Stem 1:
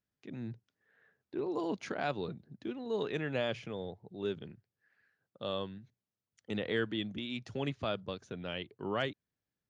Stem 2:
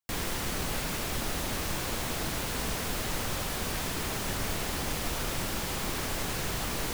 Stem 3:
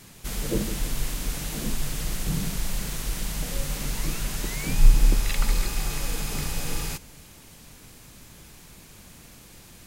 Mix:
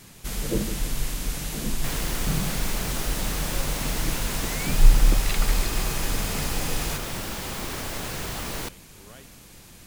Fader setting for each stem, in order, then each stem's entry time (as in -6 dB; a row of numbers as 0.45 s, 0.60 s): -16.5 dB, +0.5 dB, +0.5 dB; 0.15 s, 1.75 s, 0.00 s